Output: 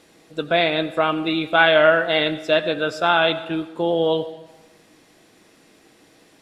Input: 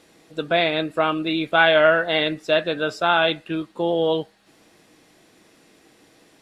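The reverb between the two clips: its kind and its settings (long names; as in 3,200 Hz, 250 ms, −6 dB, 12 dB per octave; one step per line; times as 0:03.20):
comb and all-pass reverb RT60 1.2 s, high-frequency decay 0.6×, pre-delay 45 ms, DRR 14.5 dB
level +1 dB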